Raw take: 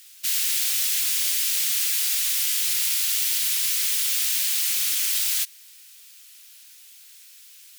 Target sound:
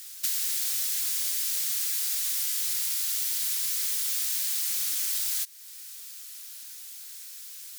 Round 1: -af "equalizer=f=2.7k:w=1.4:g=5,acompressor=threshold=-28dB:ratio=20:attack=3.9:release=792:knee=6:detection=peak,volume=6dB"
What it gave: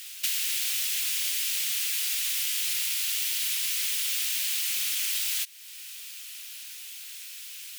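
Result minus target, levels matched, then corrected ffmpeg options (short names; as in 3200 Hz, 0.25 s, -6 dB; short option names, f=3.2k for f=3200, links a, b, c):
2000 Hz band +8.0 dB
-af "equalizer=f=2.7k:w=1.4:g=-7,acompressor=threshold=-28dB:ratio=20:attack=3.9:release=792:knee=6:detection=peak,volume=6dB"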